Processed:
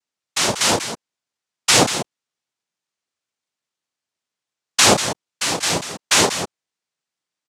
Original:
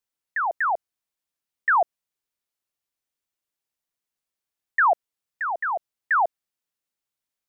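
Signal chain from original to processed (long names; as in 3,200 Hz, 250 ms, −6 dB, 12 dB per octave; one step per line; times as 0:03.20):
loudspeakers that aren't time-aligned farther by 11 metres −8 dB, 65 metres −10 dB
cochlear-implant simulation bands 2
level +5 dB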